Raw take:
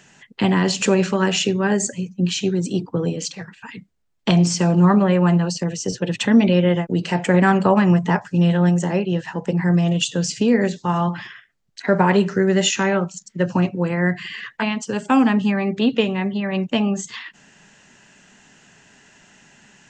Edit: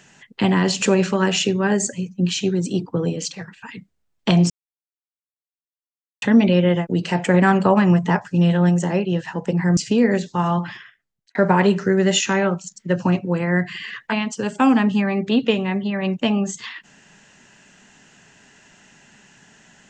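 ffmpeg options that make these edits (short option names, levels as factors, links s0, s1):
-filter_complex "[0:a]asplit=5[s0][s1][s2][s3][s4];[s0]atrim=end=4.5,asetpts=PTS-STARTPTS,afade=t=out:st=4.496:d=0.004:c=hsin[s5];[s1]atrim=start=4.5:end=6.22,asetpts=PTS-STARTPTS,volume=0[s6];[s2]atrim=start=6.22:end=9.772,asetpts=PTS-STARTPTS,afade=t=in:d=0.004:c=hsin[s7];[s3]atrim=start=10.268:end=11.85,asetpts=PTS-STARTPTS,afade=t=out:st=0.882:d=0.7[s8];[s4]atrim=start=11.85,asetpts=PTS-STARTPTS,afade=t=in:d=0.004:c=hsin[s9];[s5][s6][s7]concat=n=3:v=0:a=1[s10];[s8][s9]concat=n=2:v=0:a=1[s11];[s10][s11]acrossfade=d=0.004:c1=hsin:c2=hsin"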